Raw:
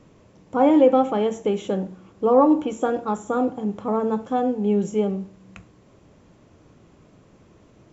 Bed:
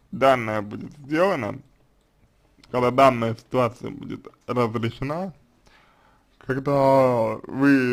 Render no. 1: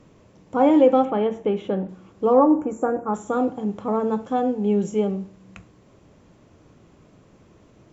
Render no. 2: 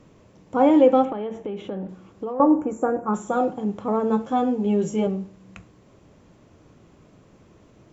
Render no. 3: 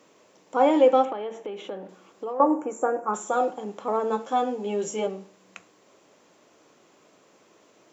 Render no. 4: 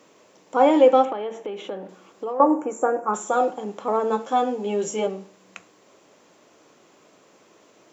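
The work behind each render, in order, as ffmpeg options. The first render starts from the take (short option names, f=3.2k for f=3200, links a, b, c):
-filter_complex "[0:a]asettb=1/sr,asplit=3[a][b][c];[a]atrim=end=1.054[d];[b]atrim=start=1.05:end=1.89,asetpts=PTS-STARTPTS,afade=t=in:d=0.004:c=qsin,afade=t=out:st=0.836:d=0.004:c=qsin,lowpass=2.8k[e];[c]atrim=start=1.886[f];[d][e]acrossfade=d=0.004:c1=hsin:c2=qsin[g];[g][f]acrossfade=d=0.004:c1=qsin:c2=hsin,asettb=1/sr,asplit=3[h][i][j];[h]atrim=end=2.394[k];[i]atrim=start=2.39:end=3.14,asetpts=PTS-STARTPTS,afade=t=in:d=0.004:c=qsin,afade=t=out:st=0.746:d=0.004:c=qsin,asuperstop=centerf=3800:order=4:qfactor=0.64[l];[j]atrim=start=3.136[m];[k][l]acrossfade=d=0.004:c1=hsin:c2=qsin[n];[n][m]acrossfade=d=0.004:c1=qsin:c2=hsin"
-filter_complex "[0:a]asettb=1/sr,asplit=3[a][b][c];[a]atrim=end=1.124[d];[b]atrim=start=1.12:end=2.4,asetpts=PTS-STARTPTS,afade=t=in:d=0.004:c=qsin,afade=t=out:st=1.276:d=0.004:c=qsin,acompressor=threshold=-26dB:ratio=10:attack=3.2:release=140:knee=1:detection=peak[e];[c]atrim=start=2.396[f];[d][e]acrossfade=d=0.004:c1=hsin:c2=qsin[g];[g][f]acrossfade=d=0.004:c1=qsin:c2=hsin,asettb=1/sr,asplit=3[h][i][j];[h]atrim=end=3.024[k];[i]atrim=start=3.02:end=3.54,asetpts=PTS-STARTPTS,afade=t=in:d=0.004:c=qsin,afade=t=out:st=0.516:d=0.004:c=qsin,aecho=1:1:5.5:0.65,atrim=end_sample=22932[l];[j]atrim=start=3.536[m];[k][l]acrossfade=d=0.004:c1=hsin:c2=qsin[n];[n][m]acrossfade=d=0.004:c1=qsin:c2=hsin,asettb=1/sr,asplit=3[o][p][q];[o]atrim=end=4.094[r];[p]atrim=start=4.09:end=5.07,asetpts=PTS-STARTPTS,afade=t=in:d=0.004:c=qsin,afade=t=out:st=0.976:d=0.004:c=qsin,asplit=2[s][t];[t]adelay=13,volume=-2.5dB[u];[s][u]amix=inputs=2:normalize=0,atrim=end_sample=43218[v];[q]atrim=start=5.066[w];[r][v]acrossfade=d=0.004:c1=hsin:c2=qsin[x];[x][w]acrossfade=d=0.004:c1=qsin:c2=hsin"
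-af "highpass=420,highshelf=f=4k:g=7"
-af "volume=3dB"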